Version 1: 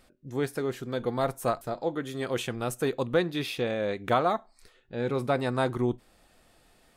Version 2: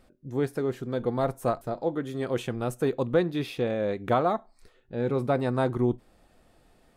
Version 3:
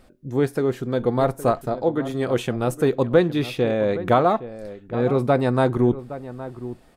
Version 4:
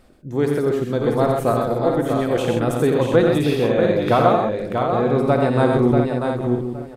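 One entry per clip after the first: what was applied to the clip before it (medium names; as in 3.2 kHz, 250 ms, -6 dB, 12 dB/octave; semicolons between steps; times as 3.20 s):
tilt shelf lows +4.5 dB, about 1.2 kHz; trim -1.5 dB
echo from a far wall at 140 m, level -14 dB; trim +6.5 dB
multi-tap echo 53/87/128/638/695/816 ms -10.5/-5.5/-5.5/-5.5/-7.5/-17 dB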